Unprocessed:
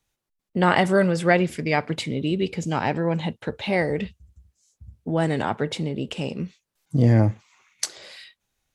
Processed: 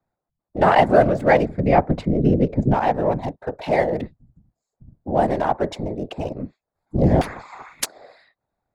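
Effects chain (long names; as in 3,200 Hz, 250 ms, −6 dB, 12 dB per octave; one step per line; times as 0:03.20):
adaptive Wiener filter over 15 samples
0:01.48–0:02.74: RIAA equalisation playback
random phases in short frames
parametric band 700 Hz +10.5 dB 1 octave
0:07.21–0:07.85: every bin compressed towards the loudest bin 10 to 1
level −1.5 dB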